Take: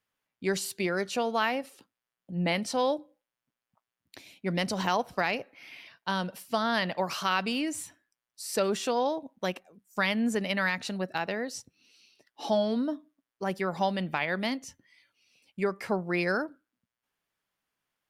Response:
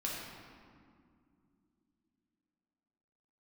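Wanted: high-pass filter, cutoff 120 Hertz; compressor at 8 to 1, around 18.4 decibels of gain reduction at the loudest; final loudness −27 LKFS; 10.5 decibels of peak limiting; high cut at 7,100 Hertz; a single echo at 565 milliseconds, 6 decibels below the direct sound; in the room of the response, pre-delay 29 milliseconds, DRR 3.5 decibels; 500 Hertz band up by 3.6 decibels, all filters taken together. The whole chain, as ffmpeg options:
-filter_complex "[0:a]highpass=120,lowpass=7100,equalizer=frequency=500:width_type=o:gain=4.5,acompressor=threshold=-39dB:ratio=8,alimiter=level_in=9.5dB:limit=-24dB:level=0:latency=1,volume=-9.5dB,aecho=1:1:565:0.501,asplit=2[link_01][link_02];[1:a]atrim=start_sample=2205,adelay=29[link_03];[link_02][link_03]afir=irnorm=-1:irlink=0,volume=-6.5dB[link_04];[link_01][link_04]amix=inputs=2:normalize=0,volume=16dB"

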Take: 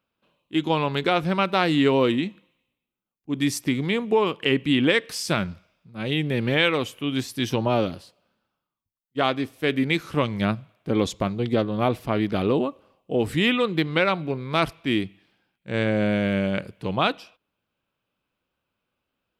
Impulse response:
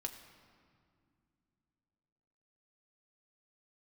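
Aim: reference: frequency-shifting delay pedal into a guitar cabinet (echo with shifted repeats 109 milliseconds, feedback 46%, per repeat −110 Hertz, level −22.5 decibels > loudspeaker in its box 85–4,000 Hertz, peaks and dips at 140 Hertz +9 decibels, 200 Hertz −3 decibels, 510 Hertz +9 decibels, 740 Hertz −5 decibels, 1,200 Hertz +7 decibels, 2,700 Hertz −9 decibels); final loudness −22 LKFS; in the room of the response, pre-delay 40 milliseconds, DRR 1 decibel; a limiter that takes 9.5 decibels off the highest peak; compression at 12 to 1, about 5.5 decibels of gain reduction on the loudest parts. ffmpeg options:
-filter_complex "[0:a]acompressor=threshold=-21dB:ratio=12,alimiter=limit=-19dB:level=0:latency=1,asplit=2[link_01][link_02];[1:a]atrim=start_sample=2205,adelay=40[link_03];[link_02][link_03]afir=irnorm=-1:irlink=0,volume=0.5dB[link_04];[link_01][link_04]amix=inputs=2:normalize=0,asplit=4[link_05][link_06][link_07][link_08];[link_06]adelay=109,afreqshift=-110,volume=-22.5dB[link_09];[link_07]adelay=218,afreqshift=-220,volume=-29.2dB[link_10];[link_08]adelay=327,afreqshift=-330,volume=-36dB[link_11];[link_05][link_09][link_10][link_11]amix=inputs=4:normalize=0,highpass=85,equalizer=frequency=140:width_type=q:width=4:gain=9,equalizer=frequency=200:width_type=q:width=4:gain=-3,equalizer=frequency=510:width_type=q:width=4:gain=9,equalizer=frequency=740:width_type=q:width=4:gain=-5,equalizer=frequency=1200:width_type=q:width=4:gain=7,equalizer=frequency=2700:width_type=q:width=4:gain=-9,lowpass=frequency=4000:width=0.5412,lowpass=frequency=4000:width=1.3066,volume=3.5dB"

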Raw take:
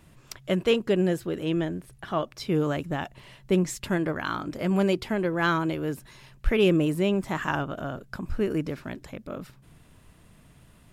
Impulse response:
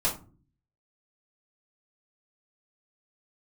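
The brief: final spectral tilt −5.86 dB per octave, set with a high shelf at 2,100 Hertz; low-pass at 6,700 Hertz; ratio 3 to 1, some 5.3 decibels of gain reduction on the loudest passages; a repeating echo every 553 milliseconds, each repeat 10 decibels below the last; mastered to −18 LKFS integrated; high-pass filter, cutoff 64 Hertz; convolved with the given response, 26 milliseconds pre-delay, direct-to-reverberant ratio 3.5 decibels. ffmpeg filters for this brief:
-filter_complex "[0:a]highpass=64,lowpass=6700,highshelf=frequency=2100:gain=-8.5,acompressor=threshold=-25dB:ratio=3,aecho=1:1:553|1106|1659|2212:0.316|0.101|0.0324|0.0104,asplit=2[link_01][link_02];[1:a]atrim=start_sample=2205,adelay=26[link_03];[link_02][link_03]afir=irnorm=-1:irlink=0,volume=-12.5dB[link_04];[link_01][link_04]amix=inputs=2:normalize=0,volume=10.5dB"

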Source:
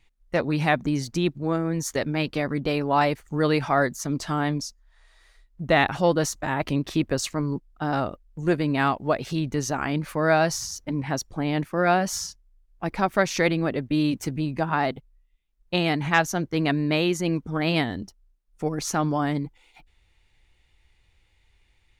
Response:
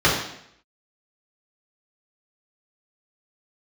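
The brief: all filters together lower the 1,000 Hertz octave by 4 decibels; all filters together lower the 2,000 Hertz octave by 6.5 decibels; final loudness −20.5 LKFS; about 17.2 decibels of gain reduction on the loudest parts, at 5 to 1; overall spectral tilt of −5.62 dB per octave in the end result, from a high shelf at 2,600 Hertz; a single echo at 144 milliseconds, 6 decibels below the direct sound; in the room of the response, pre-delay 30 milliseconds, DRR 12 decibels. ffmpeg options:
-filter_complex "[0:a]equalizer=frequency=1000:width_type=o:gain=-4,equalizer=frequency=2000:width_type=o:gain=-5.5,highshelf=frequency=2600:gain=-3.5,acompressor=threshold=-38dB:ratio=5,aecho=1:1:144:0.501,asplit=2[link_01][link_02];[1:a]atrim=start_sample=2205,adelay=30[link_03];[link_02][link_03]afir=irnorm=-1:irlink=0,volume=-33dB[link_04];[link_01][link_04]amix=inputs=2:normalize=0,volume=19dB"

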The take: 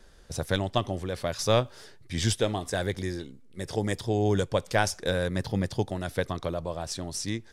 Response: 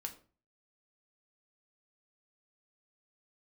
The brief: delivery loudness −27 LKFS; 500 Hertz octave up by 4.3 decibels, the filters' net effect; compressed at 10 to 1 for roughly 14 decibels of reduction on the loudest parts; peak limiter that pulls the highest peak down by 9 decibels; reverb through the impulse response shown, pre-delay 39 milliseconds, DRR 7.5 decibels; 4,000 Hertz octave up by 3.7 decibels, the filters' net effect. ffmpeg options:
-filter_complex "[0:a]equalizer=frequency=500:width_type=o:gain=5,equalizer=frequency=4000:width_type=o:gain=4.5,acompressor=threshold=-30dB:ratio=10,alimiter=level_in=1.5dB:limit=-24dB:level=0:latency=1,volume=-1.5dB,asplit=2[link_01][link_02];[1:a]atrim=start_sample=2205,adelay=39[link_03];[link_02][link_03]afir=irnorm=-1:irlink=0,volume=-5dB[link_04];[link_01][link_04]amix=inputs=2:normalize=0,volume=10.5dB"

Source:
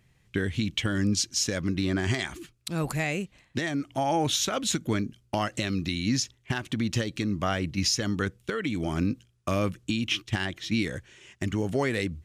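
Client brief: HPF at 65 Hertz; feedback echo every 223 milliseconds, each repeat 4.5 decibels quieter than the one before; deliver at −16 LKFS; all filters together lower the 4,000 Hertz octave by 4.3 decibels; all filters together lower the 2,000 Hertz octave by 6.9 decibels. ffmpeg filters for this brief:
ffmpeg -i in.wav -af "highpass=65,equalizer=frequency=2000:width_type=o:gain=-8,equalizer=frequency=4000:width_type=o:gain=-3.5,aecho=1:1:223|446|669|892|1115|1338|1561|1784|2007:0.596|0.357|0.214|0.129|0.0772|0.0463|0.0278|0.0167|0.01,volume=12.5dB" out.wav

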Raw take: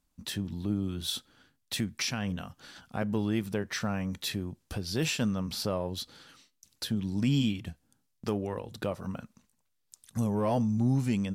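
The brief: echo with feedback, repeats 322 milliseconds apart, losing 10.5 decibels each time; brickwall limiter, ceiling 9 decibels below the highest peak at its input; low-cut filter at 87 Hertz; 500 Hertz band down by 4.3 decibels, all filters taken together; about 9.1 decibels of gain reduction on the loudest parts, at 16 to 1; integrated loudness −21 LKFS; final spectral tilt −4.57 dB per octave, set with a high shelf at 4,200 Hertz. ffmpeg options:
ffmpeg -i in.wav -af "highpass=87,equalizer=frequency=500:width_type=o:gain=-5.5,highshelf=frequency=4200:gain=6,acompressor=threshold=-32dB:ratio=16,alimiter=level_in=5dB:limit=-24dB:level=0:latency=1,volume=-5dB,aecho=1:1:322|644|966:0.299|0.0896|0.0269,volume=18.5dB" out.wav

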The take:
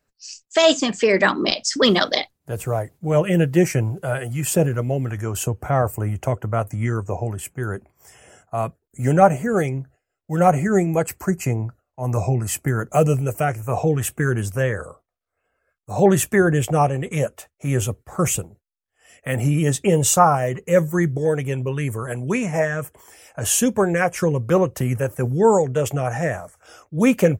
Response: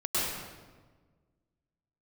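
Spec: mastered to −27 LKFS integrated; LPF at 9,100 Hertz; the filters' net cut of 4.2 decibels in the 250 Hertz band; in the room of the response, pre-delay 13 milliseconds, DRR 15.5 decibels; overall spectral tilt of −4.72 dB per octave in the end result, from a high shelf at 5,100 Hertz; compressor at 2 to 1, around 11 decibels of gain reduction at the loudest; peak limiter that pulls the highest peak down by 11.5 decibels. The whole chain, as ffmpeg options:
-filter_complex "[0:a]lowpass=9100,equalizer=frequency=250:width_type=o:gain=-7,highshelf=frequency=5100:gain=6.5,acompressor=threshold=-30dB:ratio=2,alimiter=limit=-20.5dB:level=0:latency=1,asplit=2[link_01][link_02];[1:a]atrim=start_sample=2205,adelay=13[link_03];[link_02][link_03]afir=irnorm=-1:irlink=0,volume=-25dB[link_04];[link_01][link_04]amix=inputs=2:normalize=0,volume=4.5dB"

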